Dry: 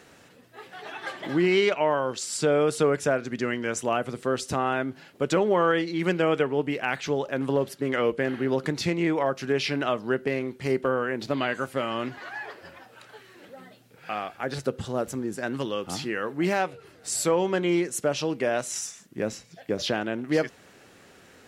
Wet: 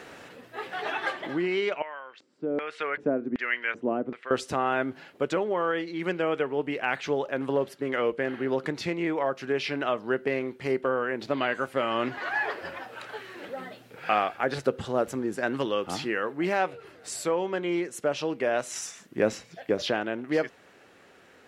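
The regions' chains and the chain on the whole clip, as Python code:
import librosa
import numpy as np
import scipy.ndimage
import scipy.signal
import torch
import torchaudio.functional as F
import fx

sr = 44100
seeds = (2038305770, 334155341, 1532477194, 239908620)

y = fx.chain(x, sr, fx.high_shelf(hz=7500.0, db=-11.0),
    fx.filter_lfo_bandpass(shape='square', hz=1.3, low_hz=270.0, high_hz=2100.0, q=2.1), at=(1.82, 4.31))
y = fx.rider(y, sr, range_db=10, speed_s=0.5)
y = fx.bass_treble(y, sr, bass_db=-7, treble_db=-8)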